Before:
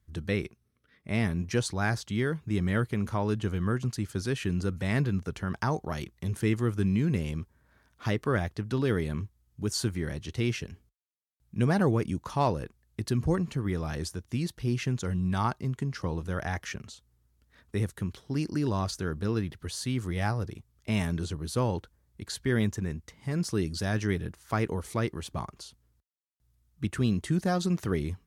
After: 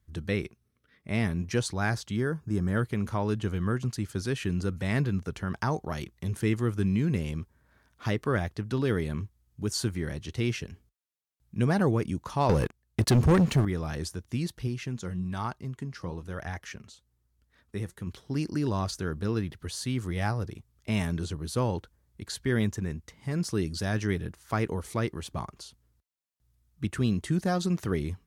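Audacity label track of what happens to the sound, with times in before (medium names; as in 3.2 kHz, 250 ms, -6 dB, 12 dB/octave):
2.170000	2.770000	time-frequency box 1.8–4.5 kHz -11 dB
12.490000	13.650000	waveshaping leveller passes 3
14.670000	18.070000	flange 1.1 Hz, delay 0.3 ms, depth 6.1 ms, regen +77%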